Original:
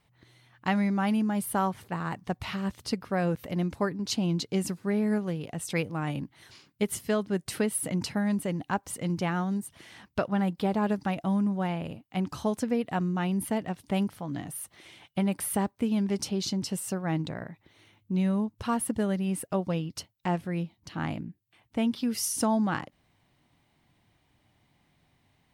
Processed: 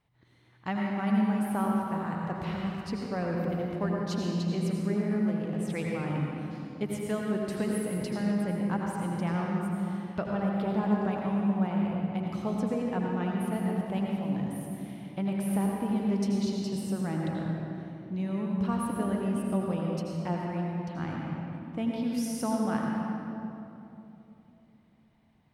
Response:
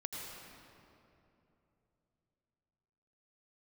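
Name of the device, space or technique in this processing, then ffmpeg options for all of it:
swimming-pool hall: -filter_complex "[1:a]atrim=start_sample=2205[a];[0:a][a]afir=irnorm=-1:irlink=0,highshelf=f=3.3k:g=-8,volume=-1.5dB"

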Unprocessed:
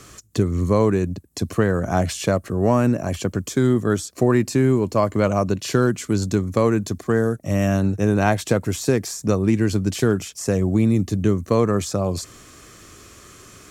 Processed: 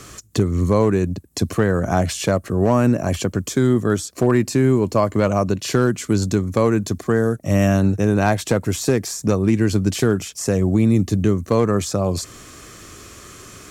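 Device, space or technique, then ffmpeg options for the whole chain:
clipper into limiter: -af "asoftclip=type=hard:threshold=-8dB,alimiter=limit=-11.5dB:level=0:latency=1:release=476,volume=4.5dB"

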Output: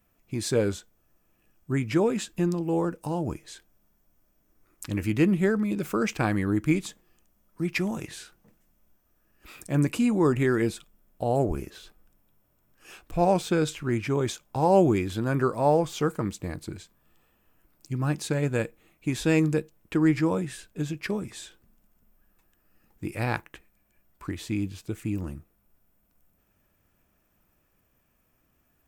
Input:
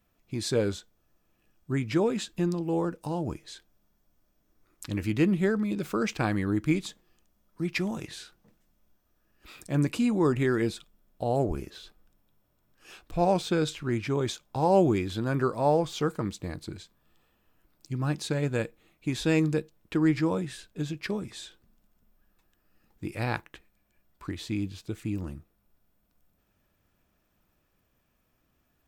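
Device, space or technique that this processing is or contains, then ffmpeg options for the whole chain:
exciter from parts: -filter_complex "[0:a]asplit=2[a][b];[b]highpass=f=4k:p=1,asoftclip=type=tanh:threshold=-28.5dB,highpass=f=3k:w=0.5412,highpass=f=3k:w=1.3066,volume=-4dB[c];[a][c]amix=inputs=2:normalize=0,volume=2dB"

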